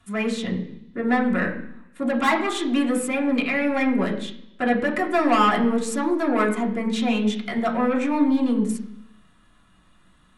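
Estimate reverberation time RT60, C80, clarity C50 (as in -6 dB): 0.70 s, 12.0 dB, 9.5 dB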